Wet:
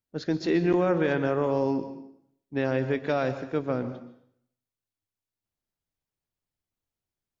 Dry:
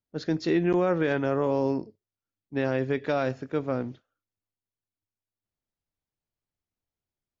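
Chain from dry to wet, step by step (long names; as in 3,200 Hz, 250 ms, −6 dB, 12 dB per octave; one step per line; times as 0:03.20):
dense smooth reverb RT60 0.67 s, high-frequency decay 0.9×, pre-delay 115 ms, DRR 11 dB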